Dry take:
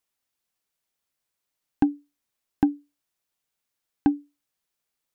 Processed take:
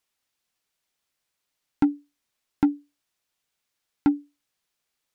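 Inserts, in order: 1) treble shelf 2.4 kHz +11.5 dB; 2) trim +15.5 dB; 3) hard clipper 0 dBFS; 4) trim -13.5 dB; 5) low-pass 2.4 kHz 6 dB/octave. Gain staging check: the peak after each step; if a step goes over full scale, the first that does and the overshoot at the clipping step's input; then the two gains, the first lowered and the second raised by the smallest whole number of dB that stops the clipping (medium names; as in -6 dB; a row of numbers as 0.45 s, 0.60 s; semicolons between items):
-8.5 dBFS, +7.0 dBFS, 0.0 dBFS, -13.5 dBFS, -13.5 dBFS; step 2, 7.0 dB; step 2 +8.5 dB, step 4 -6.5 dB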